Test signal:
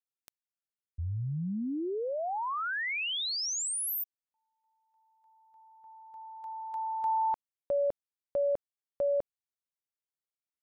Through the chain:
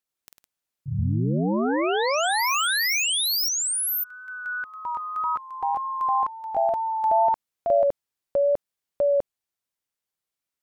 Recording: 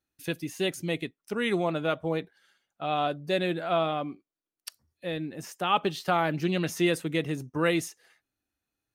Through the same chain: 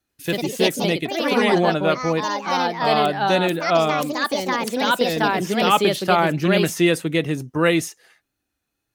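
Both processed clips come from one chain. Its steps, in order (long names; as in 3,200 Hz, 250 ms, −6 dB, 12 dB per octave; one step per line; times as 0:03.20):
delay with pitch and tempo change per echo 91 ms, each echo +3 semitones, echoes 3
tape wow and flutter 2.1 Hz 19 cents
level +7.5 dB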